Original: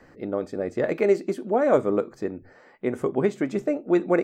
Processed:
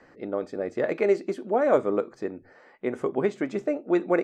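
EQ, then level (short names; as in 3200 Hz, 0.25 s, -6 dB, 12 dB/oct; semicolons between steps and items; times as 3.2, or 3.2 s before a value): air absorption 53 m; low shelf 180 Hz -10.5 dB; 0.0 dB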